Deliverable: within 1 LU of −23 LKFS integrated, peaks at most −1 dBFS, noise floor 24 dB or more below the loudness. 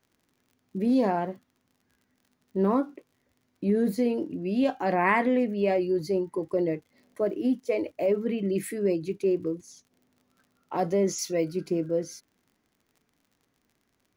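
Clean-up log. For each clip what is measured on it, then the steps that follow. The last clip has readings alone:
crackle rate 48 per second; integrated loudness −27.5 LKFS; sample peak −9.0 dBFS; target loudness −23.0 LKFS
→ click removal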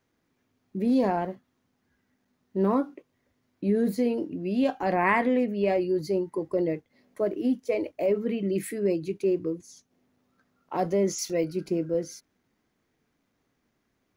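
crackle rate 0.21 per second; integrated loudness −27.5 LKFS; sample peak −9.0 dBFS; target loudness −23.0 LKFS
→ level +4.5 dB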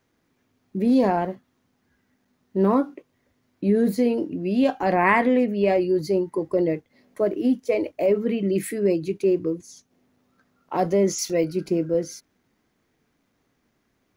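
integrated loudness −23.0 LKFS; sample peak −4.5 dBFS; background noise floor −71 dBFS

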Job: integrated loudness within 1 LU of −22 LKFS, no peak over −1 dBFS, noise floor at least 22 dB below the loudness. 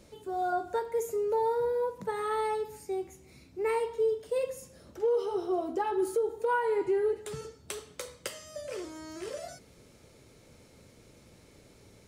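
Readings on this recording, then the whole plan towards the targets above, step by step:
integrated loudness −32.0 LKFS; sample peak −21.0 dBFS; target loudness −22.0 LKFS
→ level +10 dB

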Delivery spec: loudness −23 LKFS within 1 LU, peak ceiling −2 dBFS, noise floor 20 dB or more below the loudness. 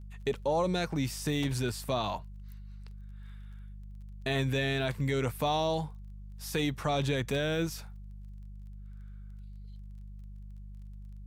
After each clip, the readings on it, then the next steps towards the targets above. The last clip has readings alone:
crackle rate 21 per second; mains hum 50 Hz; hum harmonics up to 200 Hz; level of the hum −43 dBFS; integrated loudness −31.5 LKFS; sample peak −16.5 dBFS; target loudness −23.0 LKFS
→ click removal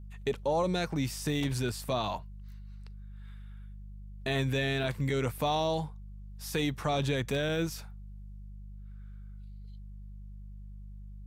crackle rate 0.36 per second; mains hum 50 Hz; hum harmonics up to 200 Hz; level of the hum −43 dBFS
→ hum removal 50 Hz, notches 4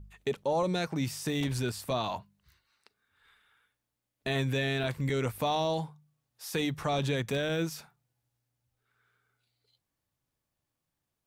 mains hum none found; integrated loudness −31.5 LKFS; sample peak −17.0 dBFS; target loudness −23.0 LKFS
→ level +8.5 dB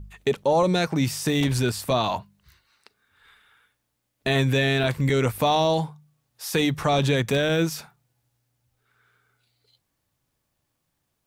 integrated loudness −23.0 LKFS; sample peak −8.5 dBFS; background noise floor −77 dBFS

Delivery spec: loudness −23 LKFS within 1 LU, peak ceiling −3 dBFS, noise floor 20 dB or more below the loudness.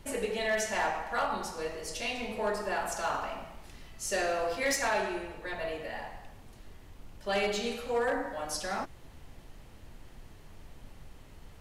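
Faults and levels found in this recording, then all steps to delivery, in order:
share of clipped samples 0.4%; peaks flattened at −23.0 dBFS; background noise floor −52 dBFS; target noise floor −53 dBFS; integrated loudness −33.0 LKFS; sample peak −23.0 dBFS; target loudness −23.0 LKFS
→ clipped peaks rebuilt −23 dBFS
noise reduction from a noise print 6 dB
level +10 dB

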